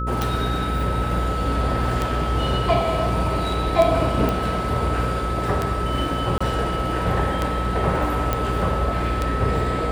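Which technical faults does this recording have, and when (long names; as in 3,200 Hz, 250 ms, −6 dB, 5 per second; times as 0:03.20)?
mains buzz 60 Hz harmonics 9 −26 dBFS
scratch tick 33 1/3 rpm
whistle 1,300 Hz −27 dBFS
0:04.29: click
0:06.38–0:06.41: drop-out 25 ms
0:08.33: click −8 dBFS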